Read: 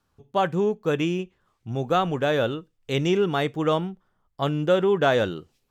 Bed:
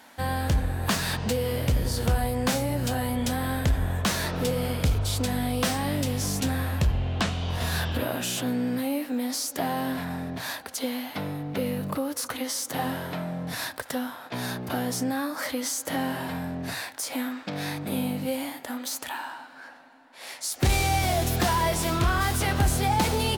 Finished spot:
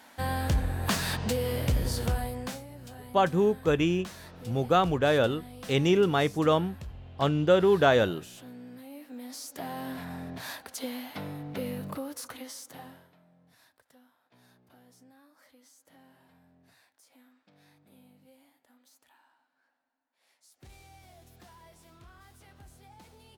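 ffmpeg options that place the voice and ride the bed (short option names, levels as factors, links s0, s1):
-filter_complex "[0:a]adelay=2800,volume=0.891[s0];[1:a]volume=3.16,afade=t=out:st=1.9:d=0.75:silence=0.158489,afade=t=in:st=8.87:d=1.4:silence=0.237137,afade=t=out:st=11.77:d=1.35:silence=0.0595662[s1];[s0][s1]amix=inputs=2:normalize=0"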